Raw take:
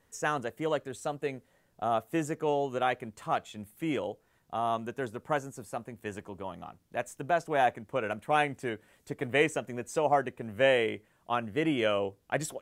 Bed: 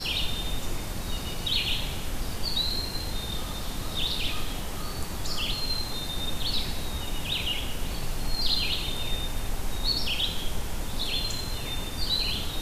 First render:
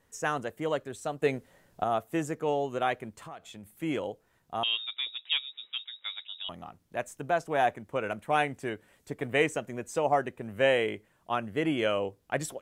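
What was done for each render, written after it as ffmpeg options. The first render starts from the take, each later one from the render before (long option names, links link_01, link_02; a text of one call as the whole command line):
ffmpeg -i in.wav -filter_complex "[0:a]asettb=1/sr,asplit=3[link_01][link_02][link_03];[link_01]atrim=end=1.224[link_04];[link_02]atrim=start=1.22:end=1.84,asetpts=PTS-STARTPTS,afade=type=in:duration=0.004:curve=qsin,afade=type=out:start_time=0.616:duration=0.004:curve=qsin,acontrast=74[link_05];[link_03]atrim=start=1.836[link_06];[link_04][link_05]acrossfade=duration=0.004:curve1=hsin:curve2=qsin[link_07];[link_07][link_06]acrossfade=duration=0.004:curve1=qsin:curve2=hsin,asettb=1/sr,asplit=3[link_08][link_09][link_10];[link_08]atrim=end=3.264[link_11];[link_09]atrim=start=3.26:end=3.73,asetpts=PTS-STARTPTS,afade=type=in:duration=0.004:curve=qsin,afade=type=out:start_time=0.466:duration=0.004:curve=qsin,acompressor=threshold=-41dB:ratio=5:attack=3.2:release=140:knee=1:detection=peak[link_12];[link_10]atrim=start=3.726[link_13];[link_11][link_12]acrossfade=duration=0.004:curve1=hsin:curve2=qsin[link_14];[link_14][link_13]acrossfade=duration=0.004:curve1=qsin:curve2=hsin,asettb=1/sr,asplit=3[link_15][link_16][link_17];[link_15]atrim=end=4.634[link_18];[link_16]atrim=start=4.63:end=6.49,asetpts=PTS-STARTPTS,afade=type=in:duration=0.004:curve=qsin,afade=type=out:start_time=1.856:duration=0.004:curve=qsin,lowpass=frequency=3300:width_type=q:width=0.5098,lowpass=frequency=3300:width_type=q:width=0.6013,lowpass=frequency=3300:width_type=q:width=0.9,lowpass=frequency=3300:width_type=q:width=2.563,afreqshift=-3900[link_19];[link_17]atrim=start=6.486[link_20];[link_18][link_19]acrossfade=duration=0.004:curve1=hsin:curve2=qsin[link_21];[link_21][link_20]acrossfade=duration=0.004:curve1=qsin:curve2=hsin" out.wav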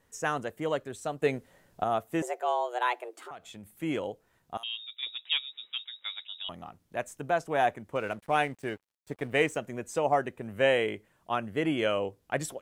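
ffmpeg -i in.wav -filter_complex "[0:a]asettb=1/sr,asplit=3[link_01][link_02][link_03];[link_01]atrim=end=2.224[link_04];[link_02]atrim=start=2.22:end=3.31,asetpts=PTS-STARTPTS,afade=type=in:duration=0.004:curve=qsin,afade=type=out:start_time=1.086:duration=0.004:curve=qsin,afreqshift=240[link_05];[link_03]atrim=start=3.306[link_06];[link_04][link_05]acrossfade=duration=0.004:curve1=hsin:curve2=qsin[link_07];[link_07][link_06]acrossfade=duration=0.004:curve1=qsin:curve2=hsin,asettb=1/sr,asplit=3[link_08][link_09][link_10];[link_08]atrim=end=4.574[link_11];[link_09]atrim=start=4.57:end=5.03,asetpts=PTS-STARTPTS,afade=type=in:duration=0.004:curve=qsin,afade=type=out:start_time=0.456:duration=0.004:curve=qsin,aderivative[link_12];[link_10]atrim=start=5.026[link_13];[link_11][link_12]acrossfade=duration=0.004:curve1=hsin:curve2=qsin[link_14];[link_14][link_13]acrossfade=duration=0.004:curve1=qsin:curve2=hsin,asettb=1/sr,asplit=3[link_15][link_16][link_17];[link_15]atrim=end=7.954[link_18];[link_16]atrim=start=7.95:end=9.58,asetpts=PTS-STARTPTS,afade=type=in:duration=0.004:curve=qsin,afade=type=out:start_time=1.626:duration=0.004:curve=qsin,aeval=exprs='sgn(val(0))*max(abs(val(0))-0.002,0)':channel_layout=same[link_19];[link_17]atrim=start=9.576[link_20];[link_18][link_19]acrossfade=duration=0.004:curve1=hsin:curve2=qsin[link_21];[link_21][link_20]acrossfade=duration=0.004:curve1=qsin:curve2=hsin" out.wav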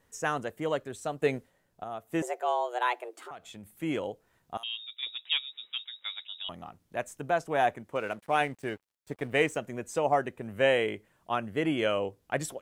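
ffmpeg -i in.wav -filter_complex "[0:a]asettb=1/sr,asplit=3[link_01][link_02][link_03];[link_01]atrim=end=7.824[link_04];[link_02]atrim=start=7.82:end=8.41,asetpts=PTS-STARTPTS,afade=type=in:duration=0.004:curve=qsin,afade=type=out:start_time=0.586:duration=0.004:curve=qsin,lowshelf=frequency=110:gain=-9.5[link_05];[link_03]atrim=start=8.406[link_06];[link_04][link_05]acrossfade=duration=0.004:curve1=hsin:curve2=qsin[link_07];[link_07][link_06]acrossfade=duration=0.004:curve1=qsin:curve2=hsin,asplit=3[link_08][link_09][link_10];[link_08]atrim=end=1.52,asetpts=PTS-STARTPTS,afade=type=out:start_time=1.37:duration=0.15:silence=0.316228[link_11];[link_09]atrim=start=1.52:end=2.01,asetpts=PTS-STARTPTS,volume=-10dB[link_12];[link_10]atrim=start=2.01,asetpts=PTS-STARTPTS,afade=type=in:duration=0.15:silence=0.316228[link_13];[link_11][link_12][link_13]concat=n=3:v=0:a=1" out.wav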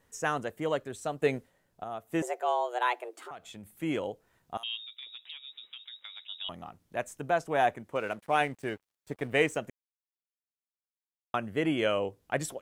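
ffmpeg -i in.wav -filter_complex "[0:a]asettb=1/sr,asplit=3[link_01][link_02][link_03];[link_01]atrim=end=4.814[link_04];[link_02]atrim=start=4.81:end=6.29,asetpts=PTS-STARTPTS,afade=type=in:duration=0.004:curve=qsin,afade=type=out:start_time=1.476:duration=0.004:curve=qsin,acompressor=threshold=-40dB:ratio=16:attack=3.2:release=140:knee=1:detection=peak[link_05];[link_03]atrim=start=6.286[link_06];[link_04][link_05]acrossfade=duration=0.004:curve1=hsin:curve2=qsin[link_07];[link_07][link_06]acrossfade=duration=0.004:curve1=qsin:curve2=hsin,asplit=3[link_08][link_09][link_10];[link_08]atrim=end=9.7,asetpts=PTS-STARTPTS,afade=type=out:start_time=9.696:duration=0.004:curve=hsin[link_11];[link_09]atrim=start=9.7:end=11.34,asetpts=PTS-STARTPTS,volume=0[link_12];[link_10]atrim=start=11.34,asetpts=PTS-STARTPTS,afade=type=in:duration=0.004:curve=hsin[link_13];[link_11][link_12][link_13]concat=n=3:v=0:a=1" out.wav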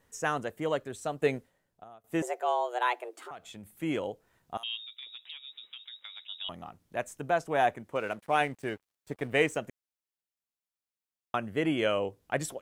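ffmpeg -i in.wav -filter_complex "[0:a]asplit=2[link_01][link_02];[link_01]atrim=end=2.04,asetpts=PTS-STARTPTS,afade=type=out:start_time=1.26:duration=0.78:silence=0.0891251[link_03];[link_02]atrim=start=2.04,asetpts=PTS-STARTPTS,afade=type=in:duration=0.004:curve=hsin:silence=0.0891251[link_04];[link_03][link_04]concat=n=2:v=0:a=1" out.wav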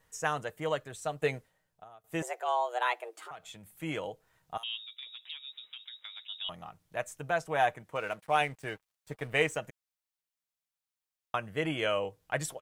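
ffmpeg -i in.wav -af "equalizer=frequency=290:width=1.1:gain=-9,aecho=1:1:6.4:0.33" out.wav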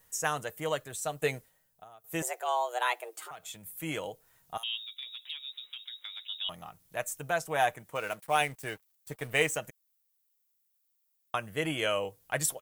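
ffmpeg -i in.wav -af "aemphasis=mode=production:type=50fm" out.wav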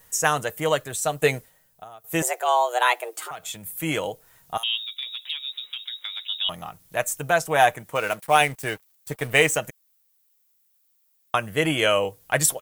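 ffmpeg -i in.wav -af "volume=9.5dB,alimiter=limit=-3dB:level=0:latency=1" out.wav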